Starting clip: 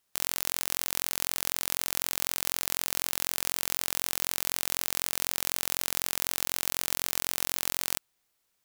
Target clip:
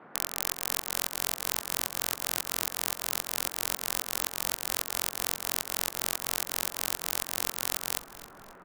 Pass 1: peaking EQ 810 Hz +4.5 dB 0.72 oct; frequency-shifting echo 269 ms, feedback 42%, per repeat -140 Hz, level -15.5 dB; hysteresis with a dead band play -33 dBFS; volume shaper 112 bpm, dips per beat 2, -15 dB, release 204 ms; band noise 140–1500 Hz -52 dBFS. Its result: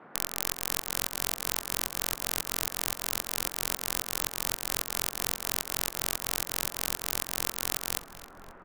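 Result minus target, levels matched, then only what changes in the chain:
hysteresis with a dead band: distortion +7 dB
change: hysteresis with a dead band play -41 dBFS

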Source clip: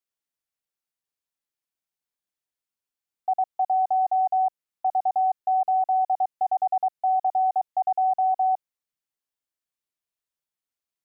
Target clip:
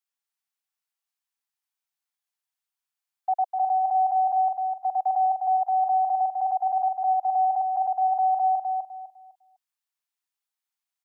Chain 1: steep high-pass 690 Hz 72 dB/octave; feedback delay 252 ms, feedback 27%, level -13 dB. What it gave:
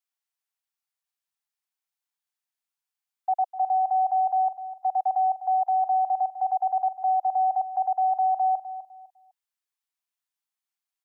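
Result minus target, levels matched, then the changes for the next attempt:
echo-to-direct -8.5 dB
change: feedback delay 252 ms, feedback 27%, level -4.5 dB

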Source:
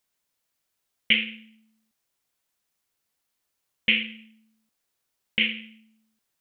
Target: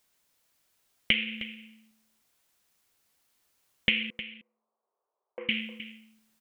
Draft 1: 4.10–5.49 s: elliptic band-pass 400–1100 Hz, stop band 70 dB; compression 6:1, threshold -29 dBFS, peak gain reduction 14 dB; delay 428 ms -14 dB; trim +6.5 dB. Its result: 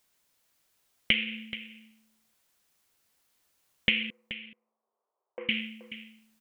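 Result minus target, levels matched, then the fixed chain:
echo 118 ms late
4.10–5.49 s: elliptic band-pass 400–1100 Hz, stop band 70 dB; compression 6:1, threshold -29 dBFS, peak gain reduction 14 dB; delay 310 ms -14 dB; trim +6.5 dB

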